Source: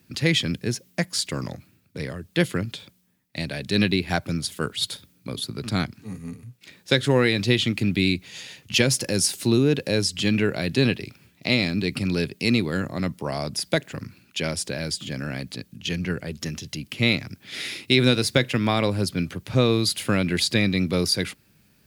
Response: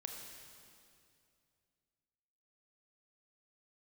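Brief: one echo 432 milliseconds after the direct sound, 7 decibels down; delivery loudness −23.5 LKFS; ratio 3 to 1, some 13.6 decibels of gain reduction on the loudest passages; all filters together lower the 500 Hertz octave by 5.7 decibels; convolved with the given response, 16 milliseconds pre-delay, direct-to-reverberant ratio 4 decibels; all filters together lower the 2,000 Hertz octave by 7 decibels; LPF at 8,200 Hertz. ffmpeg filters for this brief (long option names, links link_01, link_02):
-filter_complex "[0:a]lowpass=8200,equalizer=frequency=500:width_type=o:gain=-7,equalizer=frequency=2000:width_type=o:gain=-8.5,acompressor=threshold=-36dB:ratio=3,aecho=1:1:432:0.447,asplit=2[link_01][link_02];[1:a]atrim=start_sample=2205,adelay=16[link_03];[link_02][link_03]afir=irnorm=-1:irlink=0,volume=-1.5dB[link_04];[link_01][link_04]amix=inputs=2:normalize=0,volume=11.5dB"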